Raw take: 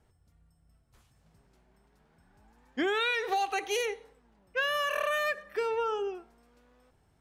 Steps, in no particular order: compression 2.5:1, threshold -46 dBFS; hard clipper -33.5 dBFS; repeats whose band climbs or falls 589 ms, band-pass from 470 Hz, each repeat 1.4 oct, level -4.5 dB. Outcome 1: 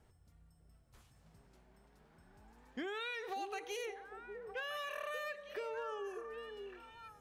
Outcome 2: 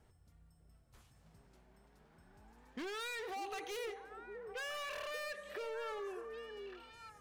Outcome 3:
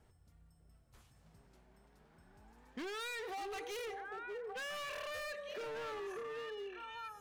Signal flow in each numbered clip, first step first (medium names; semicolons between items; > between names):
compression > repeats whose band climbs or falls > hard clipper; hard clipper > compression > repeats whose band climbs or falls; repeats whose band climbs or falls > hard clipper > compression